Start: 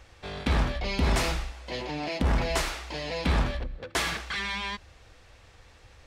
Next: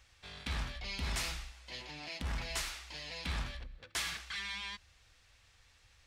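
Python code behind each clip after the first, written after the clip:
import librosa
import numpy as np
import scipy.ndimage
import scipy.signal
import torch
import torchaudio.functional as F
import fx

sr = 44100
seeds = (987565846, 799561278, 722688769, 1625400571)

y = fx.tone_stack(x, sr, knobs='5-5-5')
y = y * 10.0 ** (1.0 / 20.0)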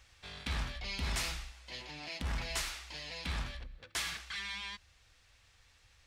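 y = fx.rider(x, sr, range_db=4, speed_s=2.0)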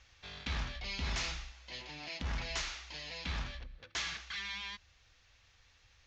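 y = scipy.signal.sosfilt(scipy.signal.ellip(4, 1.0, 40, 6700.0, 'lowpass', fs=sr, output='sos'), x)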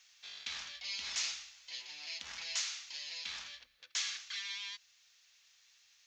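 y = np.diff(x, prepend=0.0)
y = y * 10.0 ** (7.5 / 20.0)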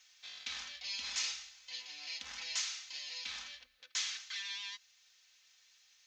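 y = x + 0.5 * np.pad(x, (int(3.9 * sr / 1000.0), 0))[:len(x)]
y = y * 10.0 ** (-1.0 / 20.0)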